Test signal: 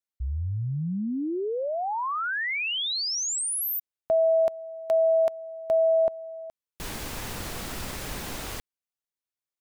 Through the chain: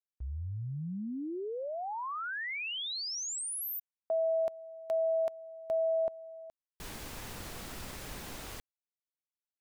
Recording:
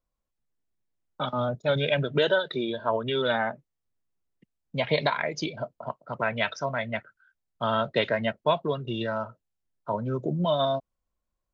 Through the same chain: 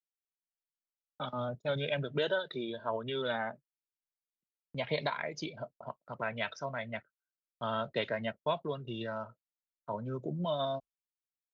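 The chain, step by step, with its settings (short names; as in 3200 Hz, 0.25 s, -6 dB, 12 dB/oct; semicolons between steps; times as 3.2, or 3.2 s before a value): gate with hold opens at -37 dBFS, closes at -43 dBFS, hold 15 ms, range -29 dB; gain -8.5 dB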